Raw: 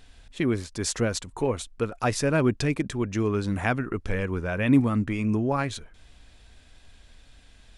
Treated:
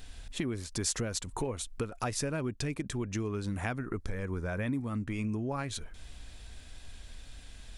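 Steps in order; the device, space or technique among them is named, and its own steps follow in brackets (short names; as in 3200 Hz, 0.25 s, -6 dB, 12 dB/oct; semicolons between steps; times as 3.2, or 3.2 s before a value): ASMR close-microphone chain (low shelf 120 Hz +4.5 dB; compressor 6:1, threshold -33 dBFS, peak gain reduction 18.5 dB; high shelf 6100 Hz +8 dB); 3.75–4.85 bell 2800 Hz -11 dB 0.29 oct; gain +1.5 dB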